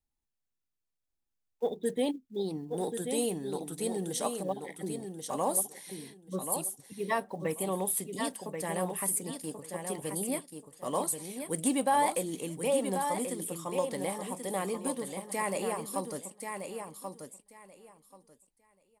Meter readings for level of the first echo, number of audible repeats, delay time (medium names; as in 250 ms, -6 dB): -6.5 dB, 2, 1084 ms